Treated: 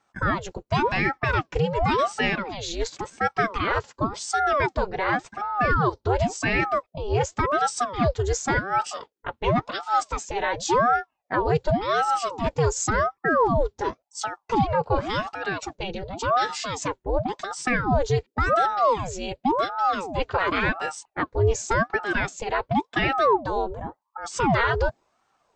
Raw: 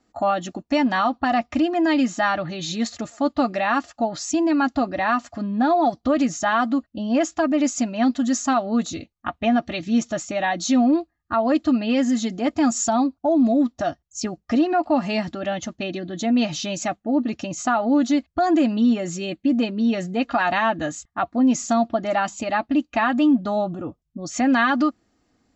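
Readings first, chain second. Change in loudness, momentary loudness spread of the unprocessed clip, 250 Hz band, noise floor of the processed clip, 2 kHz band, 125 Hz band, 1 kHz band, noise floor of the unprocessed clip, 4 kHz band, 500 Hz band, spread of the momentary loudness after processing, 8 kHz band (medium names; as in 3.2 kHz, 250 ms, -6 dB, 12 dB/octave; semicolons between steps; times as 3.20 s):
-2.5 dB, 9 LU, -12.0 dB, -76 dBFS, +1.5 dB, +8.0 dB, +0.5 dB, -73 dBFS, -1.5 dB, -0.5 dB, 9 LU, no reading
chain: ring modulator with a swept carrier 620 Hz, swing 75%, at 0.91 Hz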